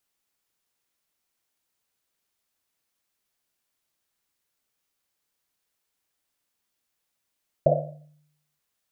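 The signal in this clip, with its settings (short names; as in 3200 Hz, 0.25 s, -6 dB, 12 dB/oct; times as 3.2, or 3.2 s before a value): Risset drum length 0.93 s, pitch 150 Hz, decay 0.85 s, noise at 600 Hz, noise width 180 Hz, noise 70%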